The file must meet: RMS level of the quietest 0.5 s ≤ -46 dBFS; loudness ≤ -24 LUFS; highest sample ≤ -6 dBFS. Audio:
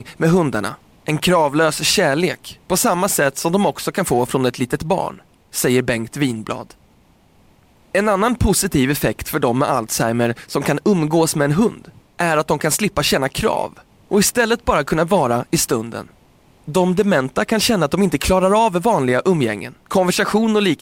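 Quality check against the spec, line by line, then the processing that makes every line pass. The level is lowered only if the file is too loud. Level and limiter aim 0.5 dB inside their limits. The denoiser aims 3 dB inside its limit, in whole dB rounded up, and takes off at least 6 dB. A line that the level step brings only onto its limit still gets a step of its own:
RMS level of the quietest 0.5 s -53 dBFS: OK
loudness -17.5 LUFS: fail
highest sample -5.5 dBFS: fail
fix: gain -7 dB

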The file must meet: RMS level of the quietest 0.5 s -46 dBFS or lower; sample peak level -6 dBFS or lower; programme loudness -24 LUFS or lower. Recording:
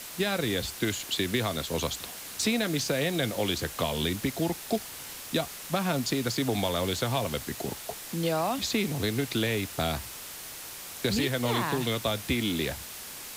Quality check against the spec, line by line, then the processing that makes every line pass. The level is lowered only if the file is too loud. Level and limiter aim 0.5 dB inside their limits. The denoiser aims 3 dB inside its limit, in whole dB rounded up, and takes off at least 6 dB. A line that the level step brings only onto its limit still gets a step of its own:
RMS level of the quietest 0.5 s -42 dBFS: fail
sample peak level -15.0 dBFS: OK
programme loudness -29.5 LUFS: OK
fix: denoiser 7 dB, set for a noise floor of -42 dBFS

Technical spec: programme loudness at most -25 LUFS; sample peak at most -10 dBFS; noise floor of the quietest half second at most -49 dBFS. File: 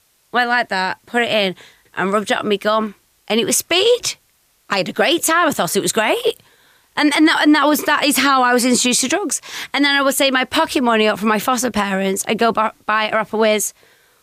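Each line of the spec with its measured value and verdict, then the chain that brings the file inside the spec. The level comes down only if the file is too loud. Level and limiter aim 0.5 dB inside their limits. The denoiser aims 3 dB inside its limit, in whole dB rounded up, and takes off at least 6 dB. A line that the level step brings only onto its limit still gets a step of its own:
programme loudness -16.5 LUFS: fail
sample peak -5.0 dBFS: fail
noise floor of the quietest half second -59 dBFS: OK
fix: gain -9 dB

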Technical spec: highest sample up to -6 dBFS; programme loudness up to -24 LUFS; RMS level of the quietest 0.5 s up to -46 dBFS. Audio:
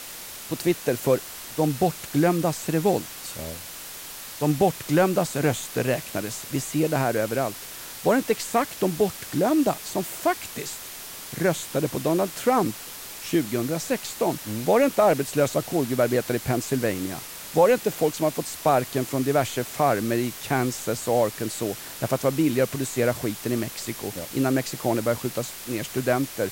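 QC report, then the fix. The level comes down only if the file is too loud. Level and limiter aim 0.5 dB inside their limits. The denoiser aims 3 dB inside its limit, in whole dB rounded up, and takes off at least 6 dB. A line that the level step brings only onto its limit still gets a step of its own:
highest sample -8.0 dBFS: OK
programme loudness -25.0 LUFS: OK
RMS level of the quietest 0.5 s -39 dBFS: fail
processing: denoiser 10 dB, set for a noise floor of -39 dBFS

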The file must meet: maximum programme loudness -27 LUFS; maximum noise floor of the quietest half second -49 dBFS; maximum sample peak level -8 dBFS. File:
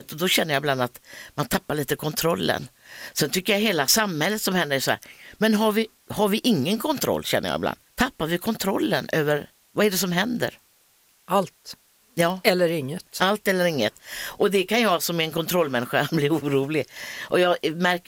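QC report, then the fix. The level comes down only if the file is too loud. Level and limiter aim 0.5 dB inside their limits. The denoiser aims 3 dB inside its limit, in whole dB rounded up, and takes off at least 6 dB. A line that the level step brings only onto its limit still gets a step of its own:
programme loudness -23.5 LUFS: fail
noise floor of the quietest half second -61 dBFS: OK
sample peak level -4.0 dBFS: fail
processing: gain -4 dB; limiter -8.5 dBFS

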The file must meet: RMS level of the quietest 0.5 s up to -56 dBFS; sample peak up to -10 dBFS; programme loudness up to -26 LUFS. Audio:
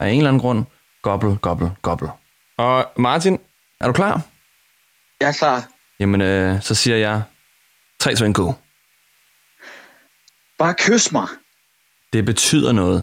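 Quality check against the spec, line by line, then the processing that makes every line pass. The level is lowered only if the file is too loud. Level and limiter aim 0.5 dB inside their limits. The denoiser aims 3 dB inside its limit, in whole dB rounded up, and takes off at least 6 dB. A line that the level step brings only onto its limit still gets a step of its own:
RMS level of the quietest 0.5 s -61 dBFS: OK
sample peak -5.5 dBFS: fail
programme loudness -18.0 LUFS: fail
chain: gain -8.5 dB

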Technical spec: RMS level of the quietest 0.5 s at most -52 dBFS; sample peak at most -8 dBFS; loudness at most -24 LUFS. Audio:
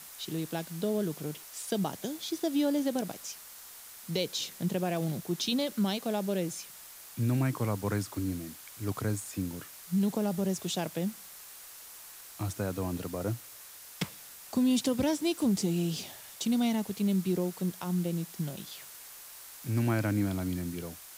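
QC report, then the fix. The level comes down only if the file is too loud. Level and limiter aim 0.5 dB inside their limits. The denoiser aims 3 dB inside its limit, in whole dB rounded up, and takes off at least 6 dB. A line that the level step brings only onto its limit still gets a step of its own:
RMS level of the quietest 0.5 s -49 dBFS: fail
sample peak -17.0 dBFS: OK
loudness -32.0 LUFS: OK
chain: denoiser 6 dB, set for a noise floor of -49 dBFS

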